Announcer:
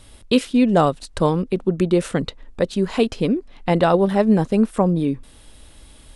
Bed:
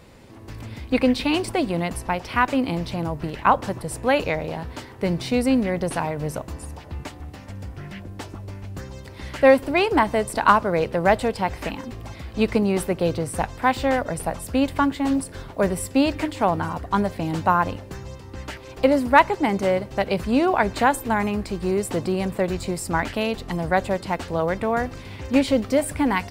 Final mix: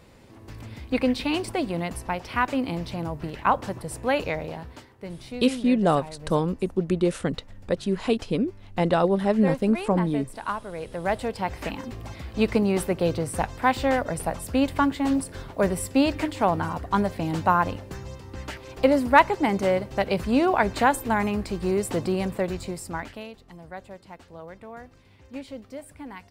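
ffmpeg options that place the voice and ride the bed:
-filter_complex "[0:a]adelay=5100,volume=-5dB[a];[1:a]volume=8.5dB,afade=t=out:st=4.42:d=0.53:silence=0.316228,afade=t=in:st=10.74:d=1.08:silence=0.237137,afade=t=out:st=22.14:d=1.21:silence=0.141254[b];[a][b]amix=inputs=2:normalize=0"

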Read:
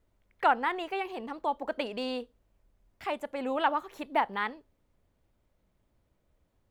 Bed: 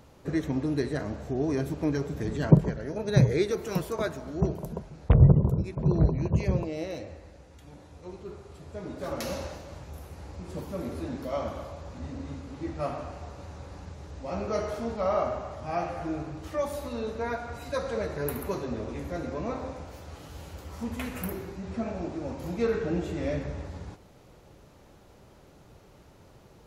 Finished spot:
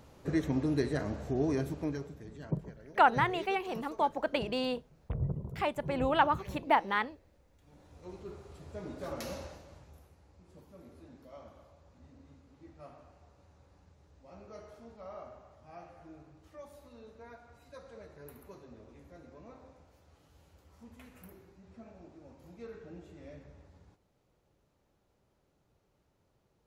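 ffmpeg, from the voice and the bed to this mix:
-filter_complex "[0:a]adelay=2550,volume=1dB[a];[1:a]volume=11dB,afade=t=out:st=1.43:d=0.78:silence=0.177828,afade=t=in:st=7.58:d=0.56:silence=0.223872,afade=t=out:st=8.79:d=1.41:silence=0.16788[b];[a][b]amix=inputs=2:normalize=0"

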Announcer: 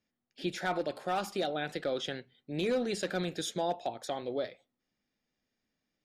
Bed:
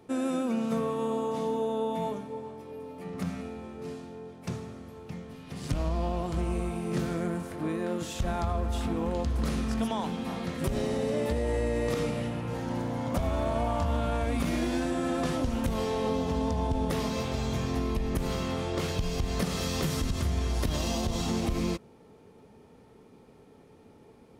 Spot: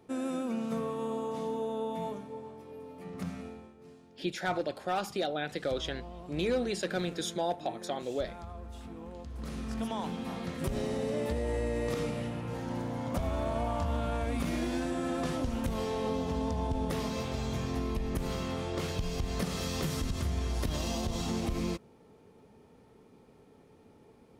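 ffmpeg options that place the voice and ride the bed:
-filter_complex "[0:a]adelay=3800,volume=0.5dB[a];[1:a]volume=6.5dB,afade=t=out:st=3.48:d=0.27:silence=0.316228,afade=t=in:st=9.28:d=0.74:silence=0.281838[b];[a][b]amix=inputs=2:normalize=0"

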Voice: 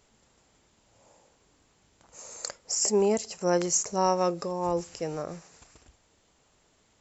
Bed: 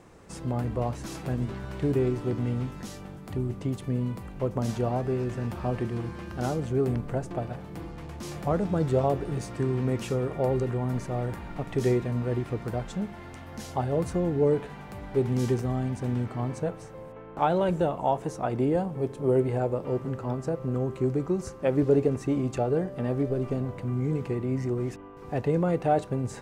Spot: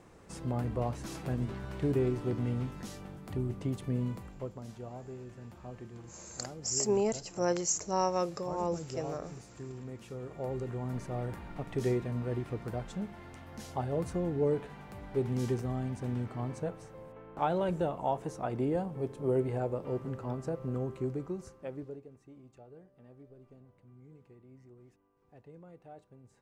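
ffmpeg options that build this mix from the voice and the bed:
-filter_complex "[0:a]adelay=3950,volume=-5dB[a];[1:a]volume=6.5dB,afade=t=out:st=4.09:d=0.49:silence=0.237137,afade=t=in:st=10.03:d=1.12:silence=0.298538,afade=t=out:st=20.76:d=1.25:silence=0.0841395[b];[a][b]amix=inputs=2:normalize=0"

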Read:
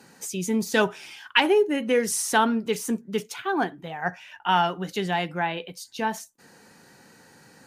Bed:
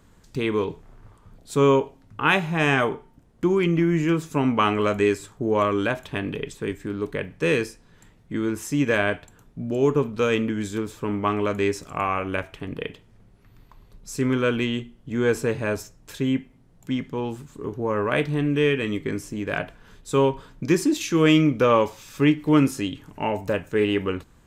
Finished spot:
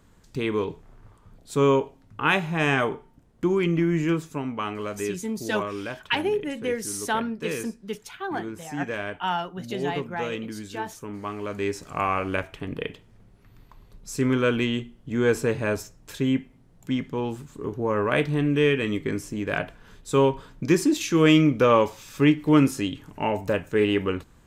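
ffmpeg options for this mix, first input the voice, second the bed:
-filter_complex "[0:a]adelay=4750,volume=-5.5dB[a];[1:a]volume=7.5dB,afade=t=out:st=4.13:d=0.31:silence=0.421697,afade=t=in:st=11.39:d=0.66:silence=0.334965[b];[a][b]amix=inputs=2:normalize=0"

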